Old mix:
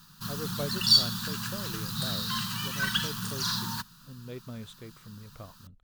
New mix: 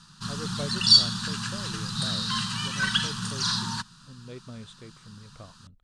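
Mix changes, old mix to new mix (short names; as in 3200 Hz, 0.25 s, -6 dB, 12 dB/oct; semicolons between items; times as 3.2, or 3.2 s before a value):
background +4.0 dB; master: add elliptic low-pass 9100 Hz, stop band 80 dB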